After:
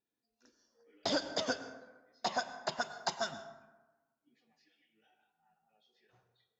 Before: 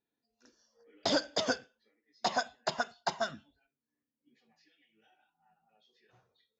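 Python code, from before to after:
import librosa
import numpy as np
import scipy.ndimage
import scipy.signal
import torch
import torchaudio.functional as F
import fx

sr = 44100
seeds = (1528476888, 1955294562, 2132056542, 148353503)

y = fx.high_shelf(x, sr, hz=5600.0, db=11.5, at=(2.81, 3.34))
y = fx.rev_plate(y, sr, seeds[0], rt60_s=1.2, hf_ratio=0.45, predelay_ms=90, drr_db=11.5)
y = F.gain(torch.from_numpy(y), -3.5).numpy()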